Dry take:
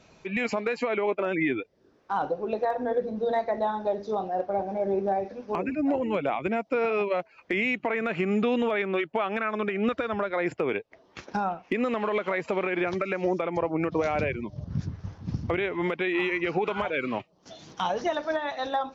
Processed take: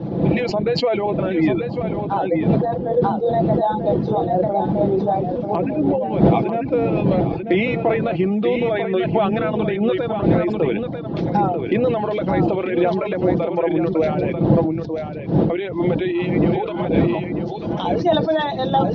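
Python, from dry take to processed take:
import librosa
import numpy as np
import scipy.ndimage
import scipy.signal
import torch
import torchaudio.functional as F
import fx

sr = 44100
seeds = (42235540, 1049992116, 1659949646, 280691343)

y = fx.dmg_wind(x, sr, seeds[0], corner_hz=280.0, level_db=-27.0)
y = scipy.signal.sosfilt(scipy.signal.butter(2, 120.0, 'highpass', fs=sr, output='sos'), y)
y = fx.dereverb_blind(y, sr, rt60_s=0.66)
y = scipy.signal.sosfilt(scipy.signal.butter(4, 4000.0, 'lowpass', fs=sr, output='sos'), y)
y = fx.band_shelf(y, sr, hz=1700.0, db=-10.0, octaves=1.7)
y = y + 0.44 * np.pad(y, (int(6.0 * sr / 1000.0), 0))[:len(y)]
y = fx.rider(y, sr, range_db=4, speed_s=0.5)
y = y + 10.0 ** (-7.0 / 20.0) * np.pad(y, (int(942 * sr / 1000.0), 0))[:len(y)]
y = fx.sustainer(y, sr, db_per_s=49.0)
y = F.gain(torch.from_numpy(y), 6.0).numpy()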